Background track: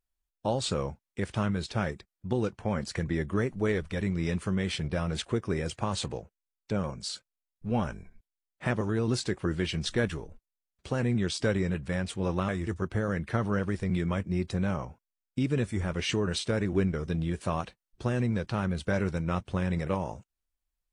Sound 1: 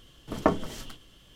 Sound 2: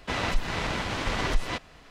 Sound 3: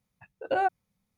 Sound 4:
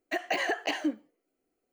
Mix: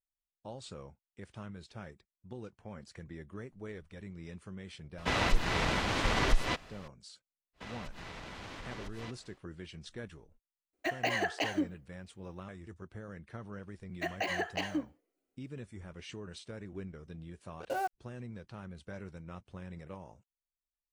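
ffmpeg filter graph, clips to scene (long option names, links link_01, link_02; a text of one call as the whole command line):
ffmpeg -i bed.wav -i cue0.wav -i cue1.wav -i cue2.wav -i cue3.wav -filter_complex "[2:a]asplit=2[link_01][link_02];[4:a]asplit=2[link_03][link_04];[0:a]volume=-16.5dB[link_05];[link_02]acompressor=threshold=-30dB:ratio=6:attack=3.2:release=140:knee=1:detection=peak[link_06];[3:a]acrusher=bits=5:mix=0:aa=0.5[link_07];[link_01]atrim=end=1.9,asetpts=PTS-STARTPTS,volume=-1dB,afade=type=in:duration=0.004:curve=hsin,afade=type=out:start_time=1.896:duration=0.004:curve=hsin,adelay=4980[link_08];[link_06]atrim=end=1.9,asetpts=PTS-STARTPTS,volume=-11dB,afade=type=in:duration=0.1,afade=type=out:start_time=1.8:duration=0.1,adelay=7530[link_09];[link_03]atrim=end=1.72,asetpts=PTS-STARTPTS,volume=-2.5dB,afade=type=in:duration=0.004:curve=hsin,afade=type=out:start_time=1.716:duration=0.004:curve=hsin,adelay=10730[link_10];[link_04]atrim=end=1.72,asetpts=PTS-STARTPTS,volume=-5dB,afade=type=in:duration=0.004:curve=hsin,afade=type=out:start_time=1.716:duration=0.004:curve=hsin,adelay=13900[link_11];[link_07]atrim=end=1.17,asetpts=PTS-STARTPTS,volume=-8.5dB,afade=type=in:duration=0.004:curve=hsin,afade=type=out:start_time=1.166:duration=0.004:curve=hsin,adelay=17190[link_12];[link_05][link_08][link_09][link_10][link_11][link_12]amix=inputs=6:normalize=0" out.wav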